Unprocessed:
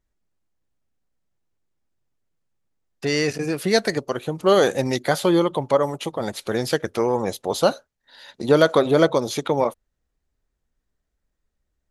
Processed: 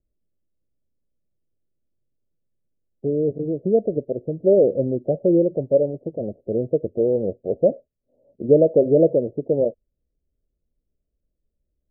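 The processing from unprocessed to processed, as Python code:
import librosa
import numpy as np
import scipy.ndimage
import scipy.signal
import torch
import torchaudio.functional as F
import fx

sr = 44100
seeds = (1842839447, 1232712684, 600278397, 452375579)

y = fx.dynamic_eq(x, sr, hz=480.0, q=2.1, threshold_db=-25.0, ratio=4.0, max_db=3)
y = scipy.signal.sosfilt(scipy.signal.butter(12, 640.0, 'lowpass', fs=sr, output='sos'), y)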